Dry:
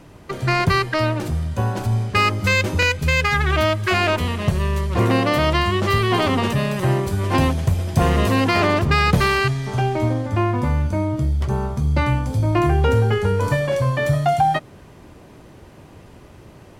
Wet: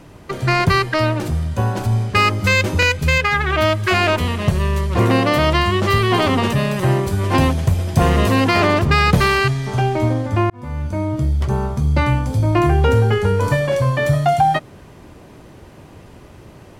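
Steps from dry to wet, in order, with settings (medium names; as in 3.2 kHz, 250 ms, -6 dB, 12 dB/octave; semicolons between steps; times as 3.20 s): 3.18–3.62 s: tone controls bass -5 dB, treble -6 dB; 10.50–11.45 s: fade in equal-power; trim +2.5 dB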